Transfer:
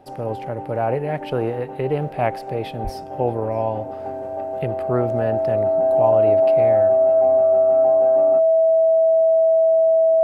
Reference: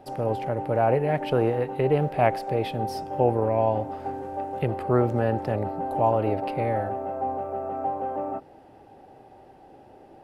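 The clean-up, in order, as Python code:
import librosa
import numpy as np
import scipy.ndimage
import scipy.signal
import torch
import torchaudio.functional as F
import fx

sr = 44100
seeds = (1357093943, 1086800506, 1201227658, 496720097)

y = fx.notch(x, sr, hz=650.0, q=30.0)
y = fx.highpass(y, sr, hz=140.0, slope=24, at=(2.83, 2.95), fade=0.02)
y = fx.fix_echo_inverse(y, sr, delay_ms=627, level_db=-24.0)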